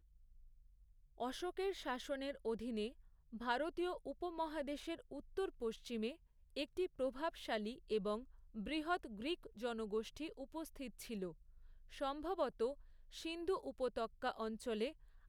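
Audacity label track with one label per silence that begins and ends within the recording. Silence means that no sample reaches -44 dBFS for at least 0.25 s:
2.880000	3.340000	silence
6.120000	6.570000	silence
8.200000	8.570000	silence
11.310000	11.950000	silence
12.730000	13.160000	silence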